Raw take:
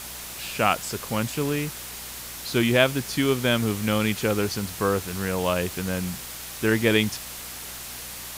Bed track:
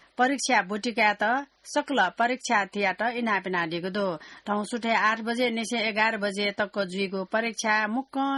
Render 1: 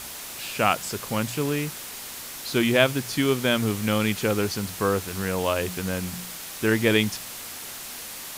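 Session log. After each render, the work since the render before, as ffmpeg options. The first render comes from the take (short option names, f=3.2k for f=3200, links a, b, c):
-af "bandreject=f=60:t=h:w=4,bandreject=f=120:t=h:w=4,bandreject=f=180:t=h:w=4"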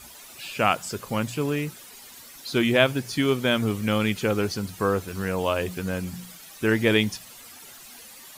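-af "afftdn=nr=12:nf=-38"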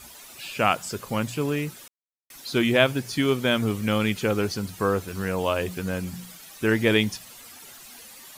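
-filter_complex "[0:a]asplit=3[a][b][c];[a]atrim=end=1.88,asetpts=PTS-STARTPTS,afade=t=out:st=1.876:d=0.004:c=hsin[d];[b]atrim=start=1.88:end=2.3,asetpts=PTS-STARTPTS,volume=0[e];[c]atrim=start=2.3,asetpts=PTS-STARTPTS,afade=t=in:d=0.004:c=hsin[f];[d][e][f]concat=n=3:v=0:a=1"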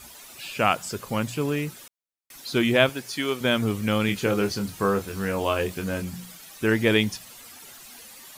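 -filter_complex "[0:a]asettb=1/sr,asplit=3[a][b][c];[a]atrim=end=2.894[d];[b]atrim=start=2.89:end=3.41,asetpts=PTS-STARTPTS,afade=t=in:d=0.004:c=qsin,afade=t=out:st=0.516:d=0.004:c=qsin,highpass=f=510:p=1[e];[c]atrim=start=3.406[f];[d][e]acrossfade=d=0.004:c1=hsin:c2=qsin[g];[g][f]acrossfade=d=0.004:c1=qsin:c2=hsin,asettb=1/sr,asplit=3[h][i][j];[h]atrim=end=4.064[k];[i]atrim=start=4.06:end=6.02,asetpts=PTS-STARTPTS,afade=t=in:d=0.004:c=qsin,afade=t=out:st=1.956:d=0.004:c=qsin,asplit=2[l][m];[m]adelay=25,volume=-6.5dB[n];[l][n]amix=inputs=2:normalize=0,atrim=end_sample=86436[o];[j]atrim=start=6.016[p];[k][o]acrossfade=d=0.004:c1=hsin:c2=qsin[q];[q][p]acrossfade=d=0.004:c1=qsin:c2=hsin"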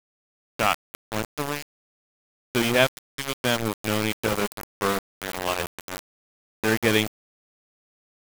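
-af "aeval=exprs='val(0)*gte(abs(val(0)),0.0944)':c=same"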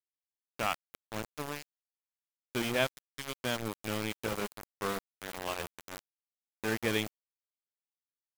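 -af "volume=-10dB"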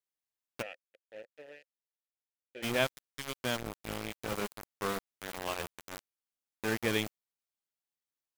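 -filter_complex "[0:a]asplit=3[a][b][c];[a]afade=t=out:st=0.61:d=0.02[d];[b]asplit=3[e][f][g];[e]bandpass=f=530:t=q:w=8,volume=0dB[h];[f]bandpass=f=1.84k:t=q:w=8,volume=-6dB[i];[g]bandpass=f=2.48k:t=q:w=8,volume=-9dB[j];[h][i][j]amix=inputs=3:normalize=0,afade=t=in:st=0.61:d=0.02,afade=t=out:st=2.62:d=0.02[k];[c]afade=t=in:st=2.62:d=0.02[l];[d][k][l]amix=inputs=3:normalize=0,asplit=3[m][n][o];[m]afade=t=out:st=3.6:d=0.02[p];[n]tremolo=f=270:d=0.974,afade=t=in:st=3.6:d=0.02,afade=t=out:st=4.28:d=0.02[q];[o]afade=t=in:st=4.28:d=0.02[r];[p][q][r]amix=inputs=3:normalize=0"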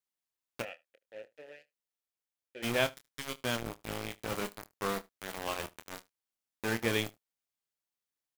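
-filter_complex "[0:a]asplit=2[a][b];[b]adelay=26,volume=-11dB[c];[a][c]amix=inputs=2:normalize=0,aecho=1:1:75:0.0631"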